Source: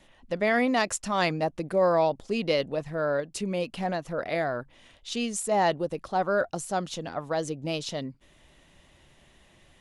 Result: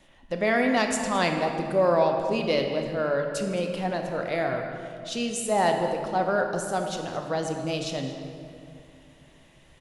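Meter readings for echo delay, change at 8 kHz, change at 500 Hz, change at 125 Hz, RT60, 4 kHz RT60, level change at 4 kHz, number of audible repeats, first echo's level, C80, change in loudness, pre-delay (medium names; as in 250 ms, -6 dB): 217 ms, +1.0 dB, +2.0 dB, +2.0 dB, 2.5 s, 1.5 s, +1.5 dB, 1, -16.0 dB, 5.5 dB, +1.5 dB, 12 ms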